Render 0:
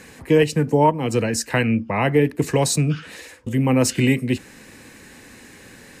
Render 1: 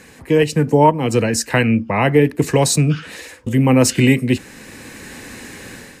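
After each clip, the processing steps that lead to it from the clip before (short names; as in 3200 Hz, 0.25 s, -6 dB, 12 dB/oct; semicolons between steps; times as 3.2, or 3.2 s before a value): AGC gain up to 9.5 dB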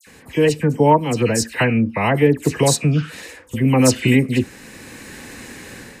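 dispersion lows, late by 71 ms, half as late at 2500 Hz; gain -1.5 dB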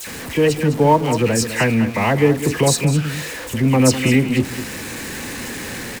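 zero-crossing step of -25.5 dBFS; echo 0.205 s -11.5 dB; gain -1 dB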